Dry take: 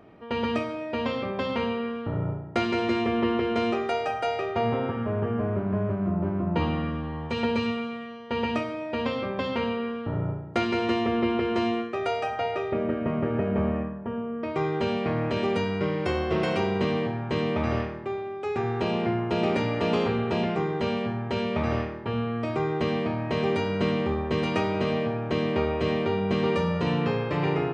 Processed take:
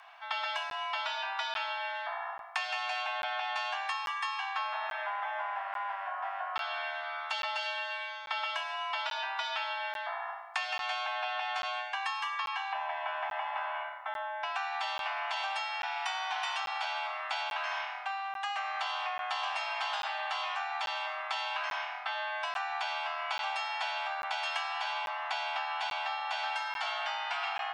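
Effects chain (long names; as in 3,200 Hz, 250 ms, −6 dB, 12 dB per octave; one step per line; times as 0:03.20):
Butterworth high-pass 240 Hz 72 dB per octave
tilt shelving filter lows −7.5 dB, about 670 Hz
downward compressor 5 to 1, threshold −32 dBFS, peak gain reduction 11.5 dB
frequency shifter +390 Hz
regular buffer underruns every 0.84 s, samples 512, zero, from 0:00.70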